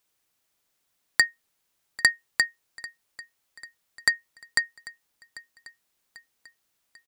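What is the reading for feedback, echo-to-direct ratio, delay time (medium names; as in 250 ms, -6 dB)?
53%, -18.5 dB, 793 ms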